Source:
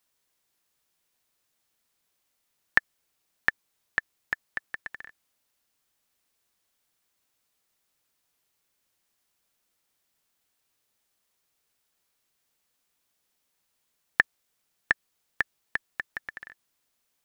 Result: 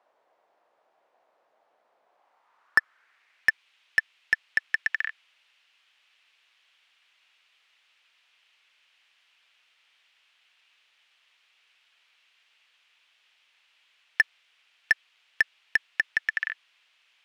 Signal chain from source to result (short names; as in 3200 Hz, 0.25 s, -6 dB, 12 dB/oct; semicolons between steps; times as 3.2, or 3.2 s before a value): band-pass sweep 650 Hz -> 2800 Hz, 2.05–3.61; overdrive pedal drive 29 dB, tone 1400 Hz, clips at -9 dBFS; gain +5.5 dB